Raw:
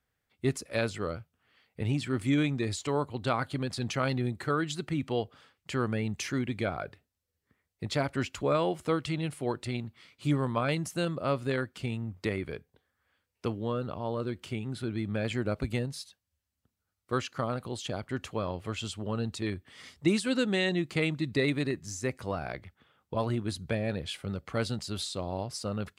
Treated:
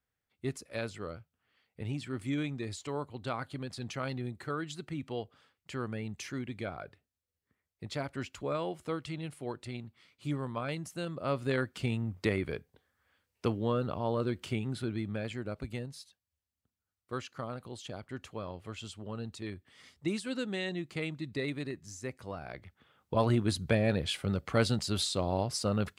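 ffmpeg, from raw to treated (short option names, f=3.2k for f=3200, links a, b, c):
-af "volume=12.5dB,afade=t=in:st=11.06:d=0.7:silence=0.375837,afade=t=out:st=14.56:d=0.78:silence=0.354813,afade=t=in:st=22.46:d=0.84:silence=0.281838"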